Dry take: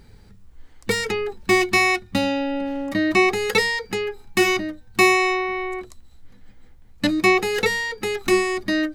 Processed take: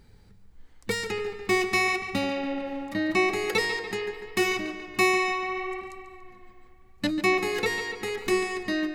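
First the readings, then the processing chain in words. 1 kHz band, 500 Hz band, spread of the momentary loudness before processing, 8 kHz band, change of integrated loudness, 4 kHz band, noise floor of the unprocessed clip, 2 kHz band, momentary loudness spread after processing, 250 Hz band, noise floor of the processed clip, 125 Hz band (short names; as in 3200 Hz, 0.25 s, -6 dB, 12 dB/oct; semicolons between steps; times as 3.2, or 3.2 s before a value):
-6.0 dB, -6.0 dB, 9 LU, -6.5 dB, -6.0 dB, -6.0 dB, -48 dBFS, -6.0 dB, 9 LU, -6.0 dB, -53 dBFS, -6.0 dB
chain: tape echo 0.144 s, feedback 71%, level -10 dB, low-pass 4900 Hz; gain -6.5 dB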